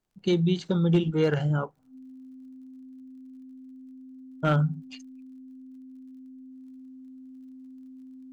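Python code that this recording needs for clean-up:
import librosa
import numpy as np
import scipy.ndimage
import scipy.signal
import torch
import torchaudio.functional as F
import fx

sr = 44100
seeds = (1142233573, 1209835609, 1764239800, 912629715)

y = fx.fix_declip(x, sr, threshold_db=-14.0)
y = fx.fix_declick_ar(y, sr, threshold=6.5)
y = fx.notch(y, sr, hz=260.0, q=30.0)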